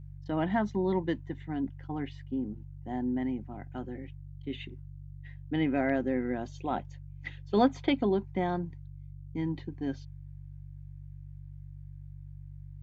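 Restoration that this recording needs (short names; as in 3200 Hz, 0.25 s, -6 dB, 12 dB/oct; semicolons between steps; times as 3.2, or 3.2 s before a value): de-hum 48 Hz, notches 3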